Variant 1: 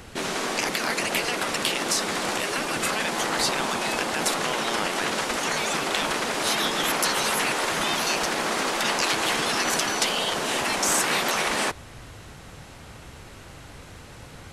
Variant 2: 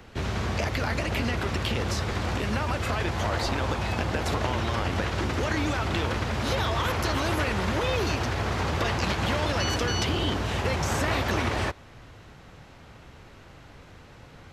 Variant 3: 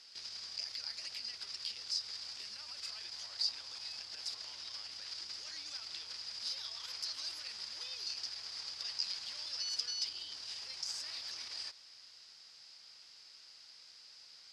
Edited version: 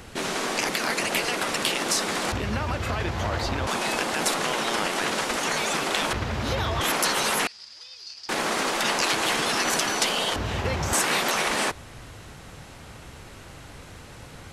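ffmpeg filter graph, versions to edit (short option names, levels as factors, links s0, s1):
-filter_complex "[1:a]asplit=3[s0][s1][s2];[0:a]asplit=5[s3][s4][s5][s6][s7];[s3]atrim=end=2.322[s8];[s0]atrim=start=2.318:end=3.672[s9];[s4]atrim=start=3.668:end=6.132[s10];[s1]atrim=start=6.128:end=6.812[s11];[s5]atrim=start=6.808:end=7.472[s12];[2:a]atrim=start=7.468:end=8.292[s13];[s6]atrim=start=8.288:end=10.362[s14];[s2]atrim=start=10.358:end=10.932[s15];[s7]atrim=start=10.928[s16];[s8][s9]acrossfade=d=0.004:c1=hsin:c2=hsin[s17];[s17][s10]acrossfade=d=0.004:c1=hsin:c2=hsin[s18];[s18][s11]acrossfade=d=0.004:c1=hsin:c2=hsin[s19];[s19][s12]acrossfade=d=0.004:c1=hsin:c2=hsin[s20];[s20][s13]acrossfade=d=0.004:c1=hsin:c2=hsin[s21];[s21][s14]acrossfade=d=0.004:c1=hsin:c2=hsin[s22];[s22][s15]acrossfade=d=0.004:c1=hsin:c2=hsin[s23];[s23][s16]acrossfade=d=0.004:c1=hsin:c2=hsin"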